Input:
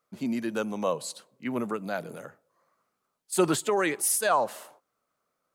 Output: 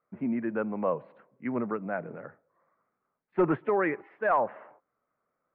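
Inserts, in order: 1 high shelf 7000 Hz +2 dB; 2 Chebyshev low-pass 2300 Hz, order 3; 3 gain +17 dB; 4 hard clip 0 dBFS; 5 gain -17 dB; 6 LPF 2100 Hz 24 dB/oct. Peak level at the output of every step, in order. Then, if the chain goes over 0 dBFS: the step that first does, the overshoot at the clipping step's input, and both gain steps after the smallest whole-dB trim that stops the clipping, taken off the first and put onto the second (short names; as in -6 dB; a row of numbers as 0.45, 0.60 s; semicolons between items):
-11.5, -11.5, +5.5, 0.0, -17.0, -16.0 dBFS; step 3, 5.5 dB; step 3 +11 dB, step 5 -11 dB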